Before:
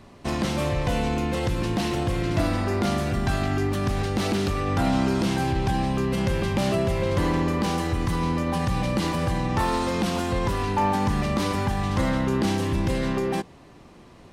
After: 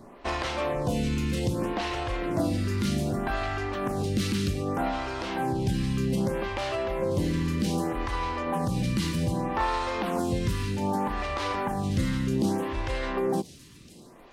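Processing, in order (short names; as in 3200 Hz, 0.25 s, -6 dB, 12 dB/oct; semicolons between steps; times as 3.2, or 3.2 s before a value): vocal rider within 4 dB 0.5 s; on a send: thin delay 1.012 s, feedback 54%, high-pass 3900 Hz, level -12.5 dB; on the sum: photocell phaser 0.64 Hz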